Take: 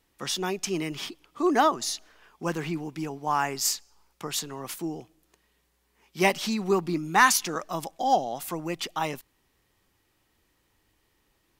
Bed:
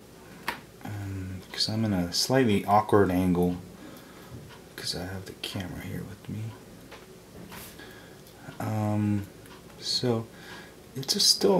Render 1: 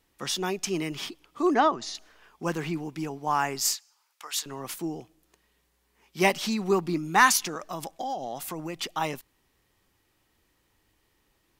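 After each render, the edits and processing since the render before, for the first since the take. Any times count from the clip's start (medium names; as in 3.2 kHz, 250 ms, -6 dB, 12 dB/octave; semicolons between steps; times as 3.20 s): 1.54–1.95 s: distance through air 120 m; 3.74–4.46 s: high-pass 1.1 kHz; 7.47–8.76 s: compression, threshold -29 dBFS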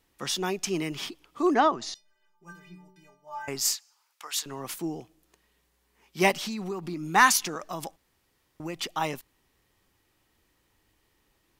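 1.94–3.48 s: inharmonic resonator 180 Hz, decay 0.77 s, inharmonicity 0.03; 6.31–7.14 s: compression, threshold -30 dBFS; 7.96–8.60 s: room tone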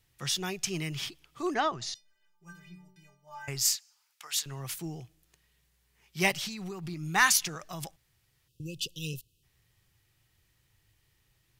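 graphic EQ 125/250/500/1000 Hz +11/-12/-5/-7 dB; 8.48–9.43 s: spectral selection erased 550–2500 Hz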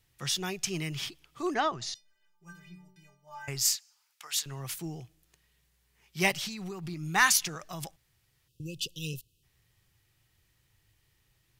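no audible change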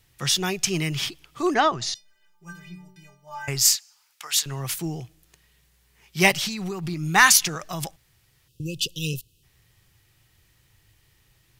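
trim +8.5 dB; peak limiter -2 dBFS, peak gain reduction 1.5 dB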